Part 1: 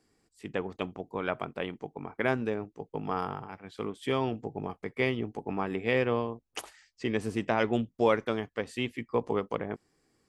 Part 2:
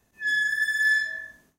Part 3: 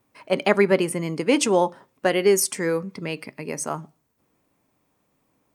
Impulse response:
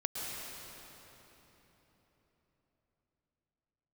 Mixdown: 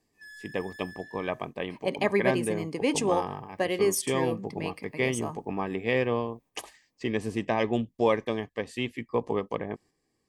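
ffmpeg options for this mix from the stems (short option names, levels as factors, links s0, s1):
-filter_complex "[0:a]volume=1.12[s0];[1:a]acompressor=threshold=0.0251:ratio=6,asoftclip=type=tanh:threshold=0.0112,volume=0.447[s1];[2:a]adelay=1550,volume=0.447[s2];[s0][s1][s2]amix=inputs=3:normalize=0,asuperstop=centerf=1400:order=8:qfactor=5,agate=range=0.501:threshold=0.00224:ratio=16:detection=peak"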